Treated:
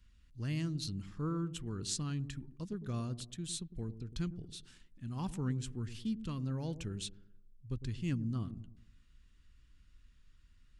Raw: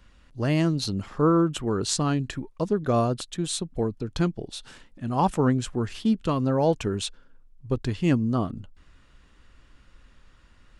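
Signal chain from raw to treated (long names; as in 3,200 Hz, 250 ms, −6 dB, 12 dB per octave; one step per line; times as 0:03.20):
guitar amp tone stack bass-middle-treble 6-0-2
on a send: delay with a low-pass on its return 106 ms, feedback 42%, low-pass 550 Hz, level −11 dB
on the sum: level +4.5 dB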